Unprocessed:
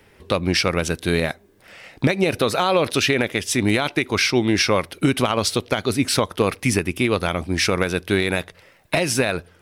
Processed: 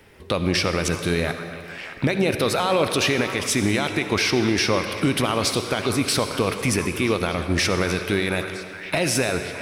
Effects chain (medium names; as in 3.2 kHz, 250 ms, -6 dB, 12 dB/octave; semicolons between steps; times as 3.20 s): repeats whose band climbs or falls 617 ms, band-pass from 1.3 kHz, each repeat 0.7 oct, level -12 dB; peak limiter -13 dBFS, peak gain reduction 6 dB; on a send at -7.5 dB: reverberation RT60 2.4 s, pre-delay 56 ms; on the sum: trim +1.5 dB